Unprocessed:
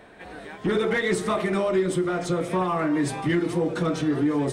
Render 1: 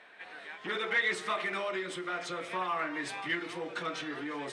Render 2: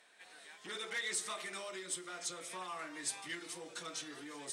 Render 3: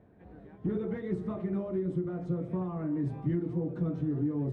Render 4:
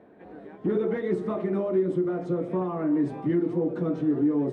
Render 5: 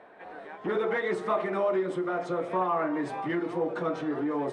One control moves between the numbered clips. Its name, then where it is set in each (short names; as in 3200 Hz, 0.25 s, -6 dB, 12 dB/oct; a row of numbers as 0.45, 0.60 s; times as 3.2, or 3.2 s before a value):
band-pass, frequency: 2400, 7600, 100, 290, 810 Hz